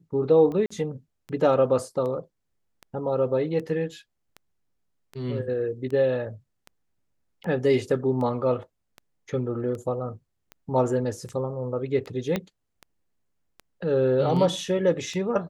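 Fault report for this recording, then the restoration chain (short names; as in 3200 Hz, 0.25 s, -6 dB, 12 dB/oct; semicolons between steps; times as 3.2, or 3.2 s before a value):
tick 78 rpm -25 dBFS
0.66–0.7 gap 45 ms
12.36 pop -13 dBFS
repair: de-click; interpolate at 0.66, 45 ms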